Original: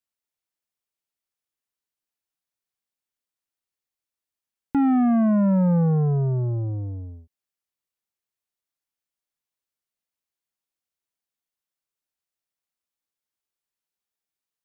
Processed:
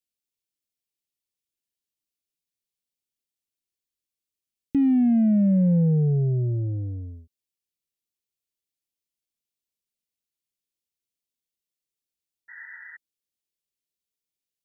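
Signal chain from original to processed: painted sound noise, 12.48–12.97 s, 880–2000 Hz -29 dBFS; Butterworth band-stop 1.1 kHz, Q 0.56

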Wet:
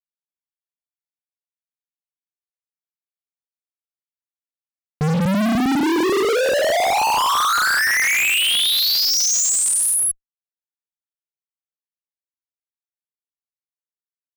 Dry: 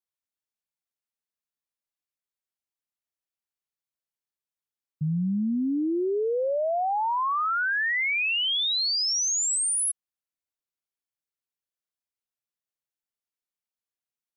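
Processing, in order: gated-style reverb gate 210 ms flat, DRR -1 dB; fuzz box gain 48 dB, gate -50 dBFS; trim -4 dB

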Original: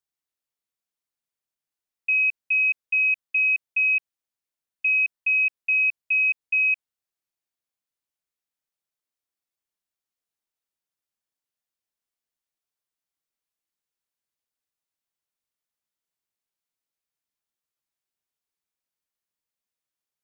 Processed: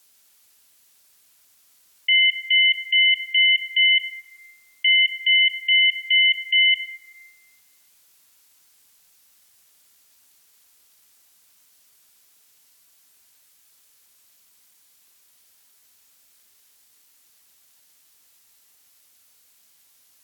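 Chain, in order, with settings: treble shelf 2.3 kHz +11.5 dB; in parallel at -2.5 dB: compressor with a negative ratio -32 dBFS, ratio -0.5; on the sum: ring modulator 450 Hz; plate-style reverb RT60 2 s, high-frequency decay 0.25×, DRR 5.5 dB

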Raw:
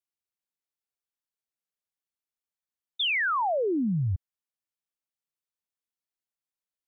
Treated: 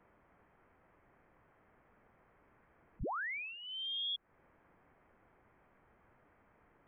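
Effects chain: zero-crossing glitches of -39 dBFS; compression 5:1, threshold -38 dBFS, peak gain reduction 11.5 dB; peaking EQ 540 Hz -12.5 dB 1.3 oct; frequency inversion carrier 3.4 kHz

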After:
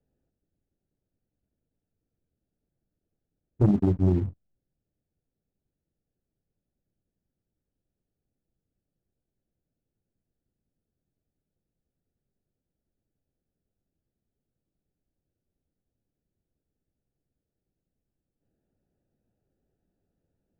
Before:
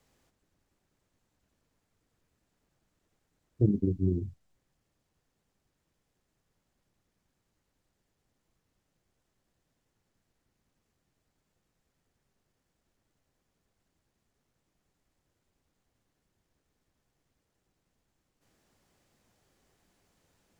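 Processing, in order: local Wiener filter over 41 samples; waveshaping leveller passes 2

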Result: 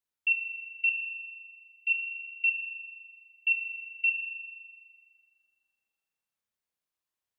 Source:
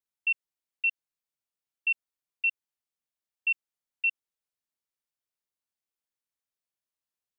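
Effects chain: 0.89–1.90 s: steep high-pass 2.7 kHz 36 dB/octave; spring tank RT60 1.9 s, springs 30 ms, chirp 35 ms, DRR 0.5 dB

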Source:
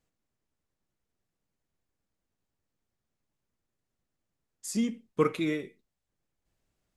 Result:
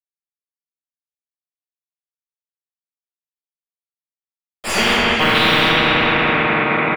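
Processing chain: random holes in the spectrogram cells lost 29%; bit crusher 8-bit; distance through air 460 m; doubling 42 ms -5 dB; on a send: tape echo 209 ms, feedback 84%, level -3 dB, low-pass 4.2 kHz; on the sum: simulated room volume 470 m³, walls mixed, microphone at 6.5 m; spectrum-flattening compressor 10:1

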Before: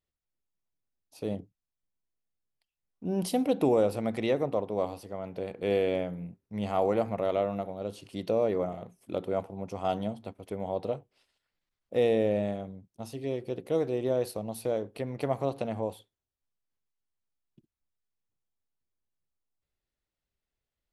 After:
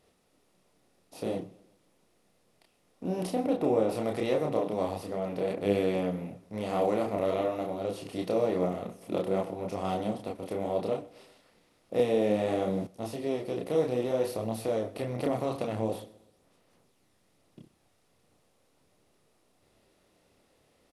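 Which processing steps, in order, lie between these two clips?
spectral levelling over time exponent 0.6; 3.27–3.89 s: treble shelf 2.6 kHz -9.5 dB; chorus voices 4, 0.68 Hz, delay 30 ms, depth 3.5 ms; feedback delay 126 ms, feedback 47%, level -22 dB; 11.99–12.87 s: three bands compressed up and down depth 100%; trim -1 dB

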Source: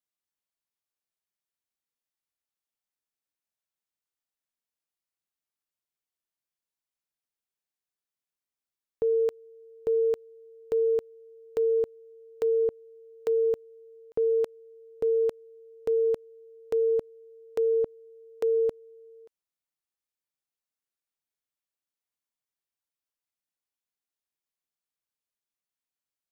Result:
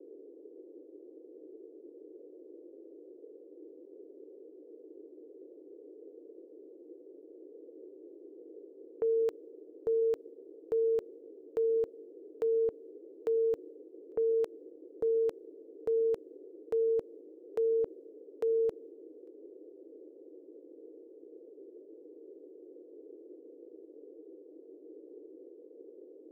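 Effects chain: expander -45 dBFS; band noise 300–490 Hz -47 dBFS; trim -4.5 dB

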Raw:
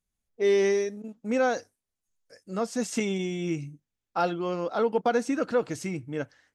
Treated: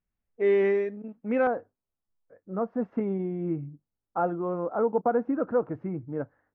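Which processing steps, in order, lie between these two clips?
low-pass 2.4 kHz 24 dB/octave, from 1.47 s 1.3 kHz

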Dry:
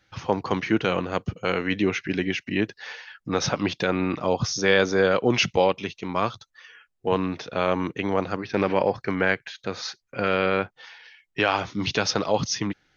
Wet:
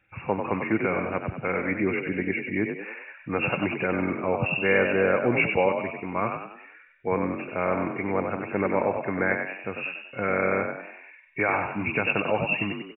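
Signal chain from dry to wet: knee-point frequency compression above 2.1 kHz 4:1; frequency-shifting echo 95 ms, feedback 45%, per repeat +40 Hz, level -6 dB; trim -3 dB

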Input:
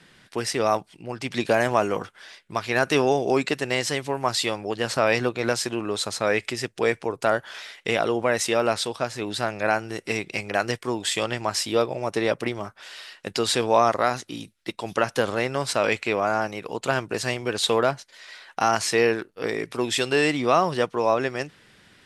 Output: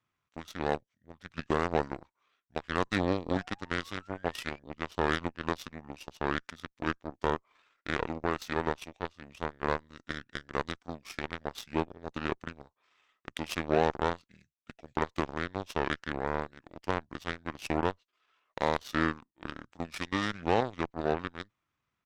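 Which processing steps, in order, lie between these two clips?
painted sound rise, 3.34–4.60 s, 940–3500 Hz -34 dBFS; pitch shift -6.5 st; Chebyshev shaper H 3 -18 dB, 4 -28 dB, 7 -22 dB, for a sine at -5.5 dBFS; trim -5 dB

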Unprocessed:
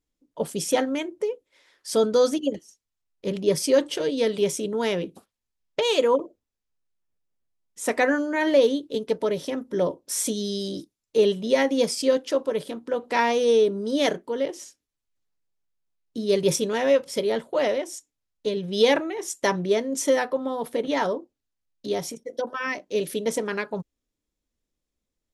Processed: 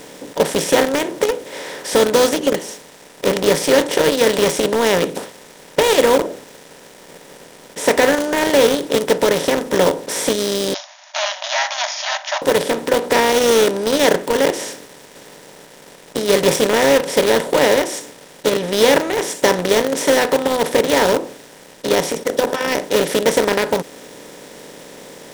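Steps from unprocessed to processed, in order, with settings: spectral levelling over time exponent 0.4; in parallel at -11 dB: companded quantiser 2-bit; 10.74–12.42 s: on the sum: brick-wall FIR band-pass 580–7000 Hz; trim -2.5 dB

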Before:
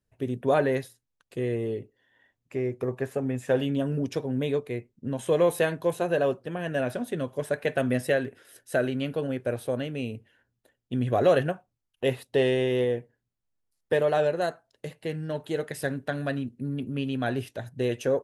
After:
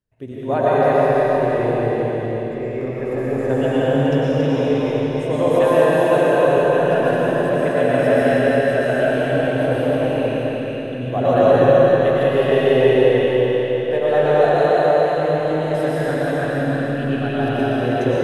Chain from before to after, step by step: backward echo that repeats 158 ms, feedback 67%, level -3 dB; treble shelf 6.3 kHz -9.5 dB; reverberation RT60 4.9 s, pre-delay 75 ms, DRR -9 dB; dynamic bell 840 Hz, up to +7 dB, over -31 dBFS, Q 1.7; trim -2.5 dB

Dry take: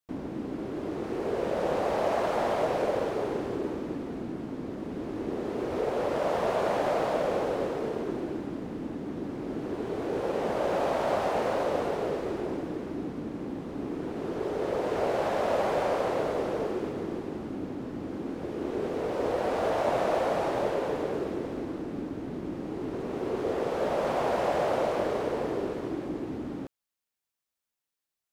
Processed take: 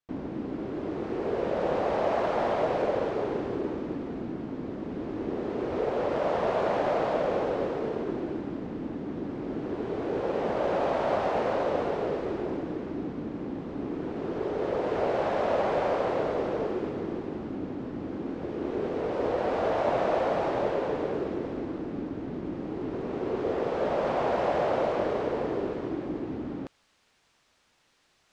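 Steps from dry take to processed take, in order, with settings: reverse; upward compressor, threshold -41 dBFS; reverse; distance through air 110 m; trim +1 dB

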